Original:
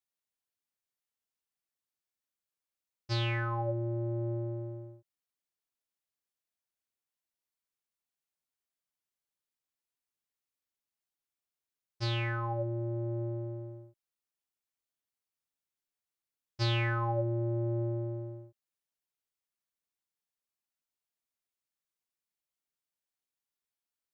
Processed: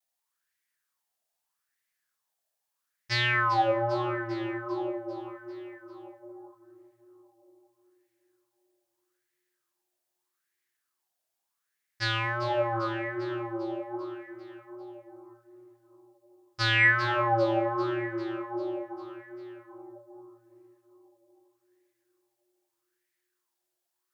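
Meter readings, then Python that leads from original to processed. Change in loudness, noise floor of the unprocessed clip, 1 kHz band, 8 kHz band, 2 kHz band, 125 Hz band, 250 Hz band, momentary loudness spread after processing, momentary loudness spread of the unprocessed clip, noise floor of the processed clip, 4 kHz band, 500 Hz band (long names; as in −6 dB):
+5.5 dB, below −85 dBFS, +11.5 dB, can't be measured, +14.0 dB, −4.0 dB, +5.5 dB, 22 LU, 13 LU, −83 dBFS, +7.5 dB, +7.5 dB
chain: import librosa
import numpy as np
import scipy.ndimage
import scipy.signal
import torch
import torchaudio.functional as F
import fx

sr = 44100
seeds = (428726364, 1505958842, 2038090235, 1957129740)

y = fx.peak_eq(x, sr, hz=1700.0, db=5.0, octaves=0.25)
y = fx.echo_bbd(y, sr, ms=237, stages=2048, feedback_pct=70, wet_db=-4)
y = fx.vibrato(y, sr, rate_hz=1.3, depth_cents=61.0)
y = fx.high_shelf(y, sr, hz=2700.0, db=11.0)
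y = fx.hum_notches(y, sr, base_hz=50, count=7)
y = fx.echo_feedback(y, sr, ms=397, feedback_pct=59, wet_db=-10.5)
y = fx.bell_lfo(y, sr, hz=0.8, low_hz=650.0, high_hz=2000.0, db=16)
y = F.gain(torch.from_numpy(y), -2.0).numpy()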